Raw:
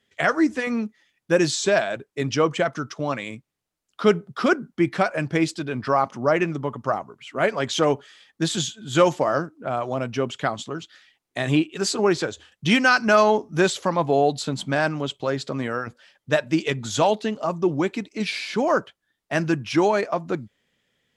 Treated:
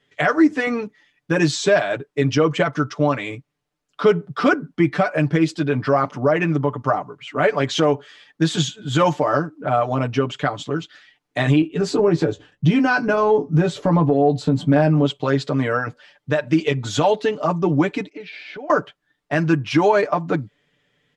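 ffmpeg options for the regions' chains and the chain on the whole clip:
-filter_complex "[0:a]asettb=1/sr,asplit=3[s0][s1][s2];[s0]atrim=end=11.614[s3];[s1]atrim=start=11.61:end=15.05,asetpts=PTS-STARTPTS,afade=t=in:d=0.004:c=qsin,afade=t=out:st=3.436:d=0.004:c=qsin,tiltshelf=f=700:g=7,acompressor=threshold=0.1:ratio=2.5:attack=3.2:release=140:knee=1:detection=peak,asplit=2[s4][s5];[s5]adelay=18,volume=0.316[s6];[s4][s6]amix=inputs=2:normalize=0,atrim=end_sample=151704[s7];[s2]atrim=start=15.046[s8];[s3][s7]acrossfade=d=0.004:c1=hsin:c2=qsin[s9];[s9][s8]acrossfade=d=0.004:c1=qsin:c2=hsin,asettb=1/sr,asplit=3[s10][s11][s12];[s10]atrim=end=18.094[s13];[s11]atrim=start=18.09:end=18.7,asetpts=PTS-STARTPTS,afade=t=in:d=0.004:c=qsin,afade=t=out:st=0.606:d=0.004:c=qsin,highpass=280,lowpass=2900,equalizer=f=1100:t=o:w=0.34:g=-12.5,acompressor=threshold=0.0141:ratio=12:attack=3.2:release=140:knee=1:detection=peak[s14];[s12]atrim=start=18.696[s15];[s13][s14]acrossfade=d=0.004:c1=hsin:c2=qsin[s16];[s16][s15]acrossfade=d=0.004:c1=qsin:c2=hsin,aemphasis=mode=reproduction:type=50kf,aecho=1:1:6.8:0.8,alimiter=limit=0.282:level=0:latency=1:release=178,volume=1.68"

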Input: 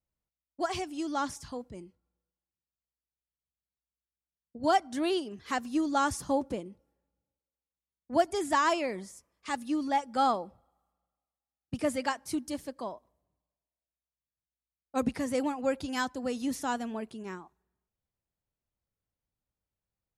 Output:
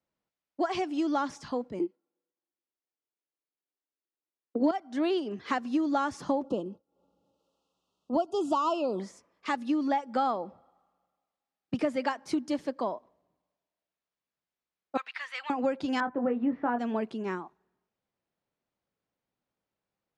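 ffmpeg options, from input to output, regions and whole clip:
-filter_complex "[0:a]asettb=1/sr,asplit=3[s0][s1][s2];[s0]atrim=end=1.794[s3];[s1]atrim=start=1.79:end=4.71,asetpts=PTS-STARTPTS,afade=t=in:d=0.004:c=qsin,afade=t=out:st=2.916:d=0.004:c=qsin,agate=range=0.158:threshold=0.00398:ratio=16:release=100:detection=peak,highpass=f=320:t=q:w=2.6,acontrast=82[s4];[s2]atrim=start=4.706[s5];[s3][s4]acrossfade=d=0.004:c1=hsin:c2=qsin[s6];[s6][s5]acrossfade=d=0.004:c1=qsin:c2=hsin,asettb=1/sr,asplit=3[s7][s8][s9];[s7]atrim=end=6.444[s10];[s8]atrim=start=6.44:end=9,asetpts=PTS-STARTPTS,afade=t=in:d=0.004:c=qsin,afade=t=out:st=2.556:d=0.004:c=qsin,agate=range=0.0224:threshold=0.002:ratio=3:release=100:detection=peak,acompressor=mode=upward:threshold=0.00631:ratio=2.5:attack=3.2:release=140:knee=2.83:detection=peak,asuperstop=centerf=1900:order=20:qfactor=1.6[s11];[s9]atrim=start=8.996[s12];[s10][s11]acrossfade=d=0.004:c1=hsin:c2=qsin[s13];[s13][s12]acrossfade=d=0.004:c1=qsin:c2=hsin,asettb=1/sr,asplit=3[s14][s15][s16];[s14]atrim=end=14.974[s17];[s15]atrim=start=14.97:end=15.5,asetpts=PTS-STARTPTS,afade=t=in:d=0.004:c=qsin,afade=t=out:st=0.526:d=0.004:c=qsin,highpass=f=1300:w=0.5412,highpass=f=1300:w=1.3066,highshelf=f=4800:t=q:w=1.5:g=-8.5[s18];[s16]atrim=start=15.496[s19];[s17][s18]acrossfade=d=0.004:c1=hsin:c2=qsin[s20];[s20][s19]acrossfade=d=0.004:c1=qsin:c2=hsin,asettb=1/sr,asplit=3[s21][s22][s23];[s21]atrim=end=16.004[s24];[s22]atrim=start=16:end=16.79,asetpts=PTS-STARTPTS,afade=t=in:d=0.004:c=qsin,afade=t=out:st=0.786:d=0.004:c=qsin,lowpass=f=2100:w=0.5412,lowpass=f=2100:w=1.3066,aemphasis=mode=reproduction:type=50fm,asplit=2[s25][s26];[s26]adelay=21,volume=0.501[s27];[s25][s27]amix=inputs=2:normalize=0,atrim=end_sample=34839[s28];[s23]atrim=start=16.786[s29];[s24][s28]acrossfade=d=0.004:c1=hsin:c2=qsin[s30];[s30][s29]acrossfade=d=0.004:c1=qsin:c2=hsin,acrossover=split=160 6800:gain=0.1 1 0.112[s31][s32][s33];[s31][s32][s33]amix=inputs=3:normalize=0,acompressor=threshold=0.0224:ratio=6,highshelf=f=3300:g=-8.5,volume=2.66"

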